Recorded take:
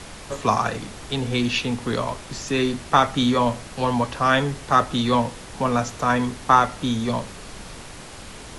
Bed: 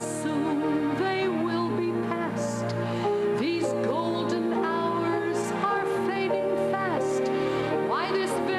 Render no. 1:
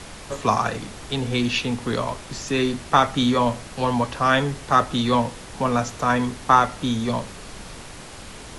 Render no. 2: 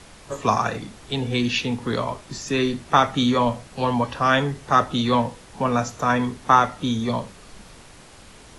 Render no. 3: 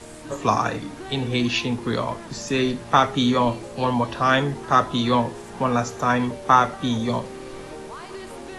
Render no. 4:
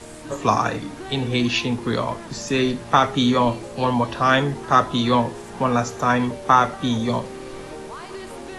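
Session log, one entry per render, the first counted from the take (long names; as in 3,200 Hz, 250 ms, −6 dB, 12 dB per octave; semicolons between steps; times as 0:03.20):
no processing that can be heard
noise reduction from a noise print 7 dB
mix in bed −11 dB
level +1.5 dB; brickwall limiter −3 dBFS, peak gain reduction 2 dB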